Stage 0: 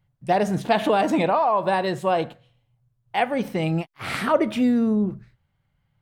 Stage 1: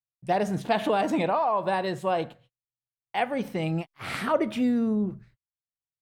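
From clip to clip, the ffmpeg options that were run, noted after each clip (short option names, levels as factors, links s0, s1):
-af "agate=range=0.0158:threshold=0.00316:ratio=16:detection=peak,volume=0.596"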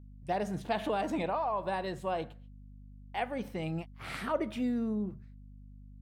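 -af "aeval=exprs='val(0)+0.00794*(sin(2*PI*50*n/s)+sin(2*PI*2*50*n/s)/2+sin(2*PI*3*50*n/s)/3+sin(2*PI*4*50*n/s)/4+sin(2*PI*5*50*n/s)/5)':c=same,volume=0.422"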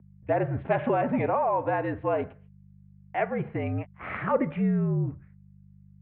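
-af "highpass=f=150:t=q:w=0.5412,highpass=f=150:t=q:w=1.307,lowpass=f=2400:t=q:w=0.5176,lowpass=f=2400:t=q:w=0.7071,lowpass=f=2400:t=q:w=1.932,afreqshift=-59,volume=2.24"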